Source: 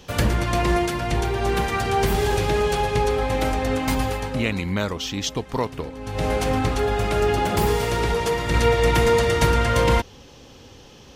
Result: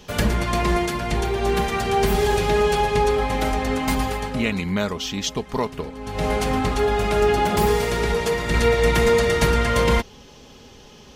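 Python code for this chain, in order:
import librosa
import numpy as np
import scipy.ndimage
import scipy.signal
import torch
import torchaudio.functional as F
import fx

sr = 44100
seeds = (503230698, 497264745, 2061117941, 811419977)

y = x + 0.4 * np.pad(x, (int(4.8 * sr / 1000.0), 0))[:len(x)]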